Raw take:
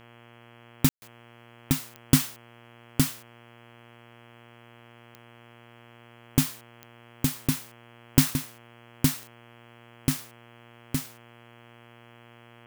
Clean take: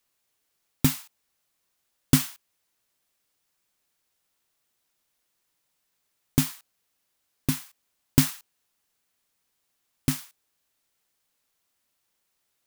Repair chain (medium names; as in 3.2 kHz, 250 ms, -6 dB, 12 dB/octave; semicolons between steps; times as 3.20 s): de-click; de-hum 118.1 Hz, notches 28; room tone fill 0.89–1.02 s; inverse comb 864 ms -3.5 dB